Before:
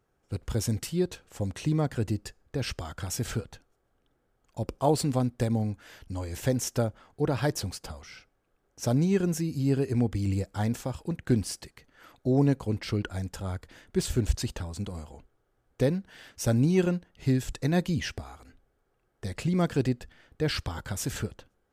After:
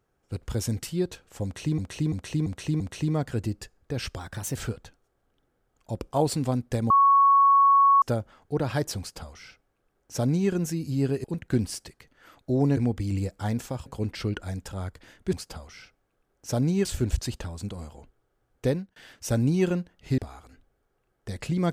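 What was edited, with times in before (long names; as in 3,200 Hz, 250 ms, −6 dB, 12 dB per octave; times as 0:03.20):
0:01.44–0:01.78: repeat, 5 plays
0:02.83–0:03.23: play speed 111%
0:05.58–0:06.70: beep over 1,110 Hz −14.5 dBFS
0:07.67–0:09.19: duplicate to 0:14.01
0:09.92–0:11.01: move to 0:12.54
0:15.87–0:16.12: fade out
0:17.34–0:18.14: remove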